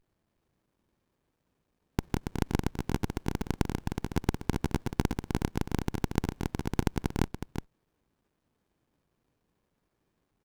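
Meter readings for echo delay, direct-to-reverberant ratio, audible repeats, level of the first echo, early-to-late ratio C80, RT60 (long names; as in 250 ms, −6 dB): 368 ms, no reverb audible, 1, −7.5 dB, no reverb audible, no reverb audible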